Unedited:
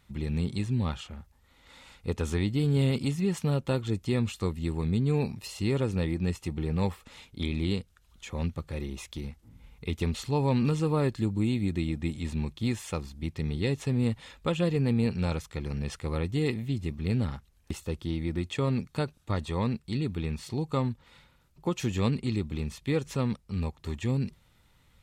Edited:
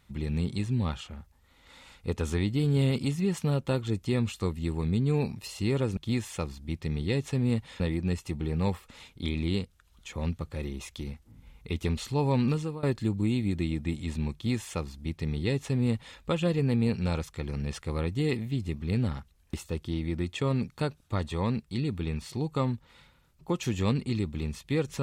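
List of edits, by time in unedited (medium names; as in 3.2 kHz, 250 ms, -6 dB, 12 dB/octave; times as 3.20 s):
10.65–11.00 s: fade out, to -20 dB
12.51–14.34 s: copy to 5.97 s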